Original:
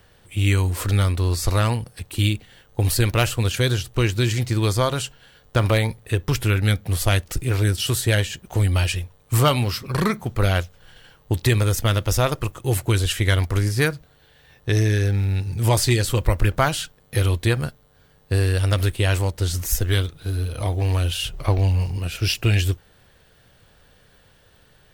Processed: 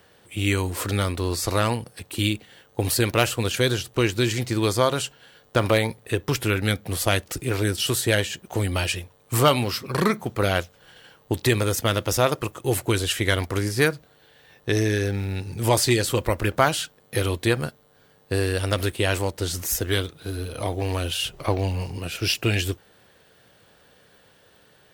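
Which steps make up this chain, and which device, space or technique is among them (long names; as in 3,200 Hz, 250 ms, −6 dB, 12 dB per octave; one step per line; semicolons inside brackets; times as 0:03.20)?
filter by subtraction (in parallel: low-pass filter 330 Hz 12 dB per octave + polarity inversion)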